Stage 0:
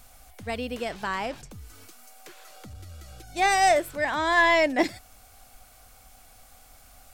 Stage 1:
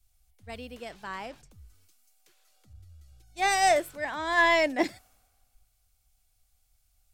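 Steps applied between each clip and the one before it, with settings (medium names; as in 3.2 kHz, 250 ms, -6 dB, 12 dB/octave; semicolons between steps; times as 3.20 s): three bands expanded up and down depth 70%; trim -7 dB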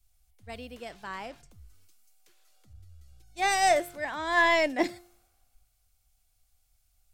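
feedback comb 350 Hz, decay 0.55 s, mix 50%; trim +5 dB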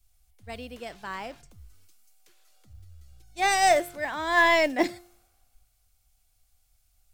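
modulation noise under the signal 32 dB; trim +2.5 dB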